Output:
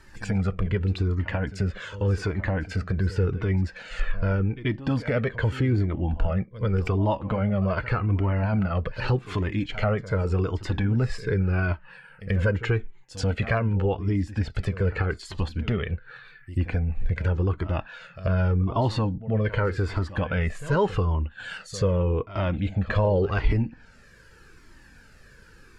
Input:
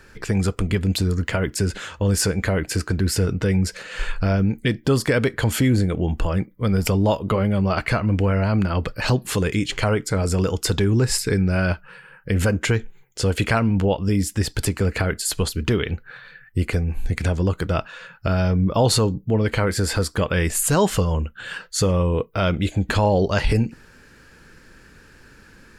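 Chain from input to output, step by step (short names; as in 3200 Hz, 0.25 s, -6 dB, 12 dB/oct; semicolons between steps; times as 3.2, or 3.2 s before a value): pre-echo 86 ms -15.5 dB; treble ducked by the level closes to 2400 Hz, closed at -20 dBFS; cascading flanger falling 0.85 Hz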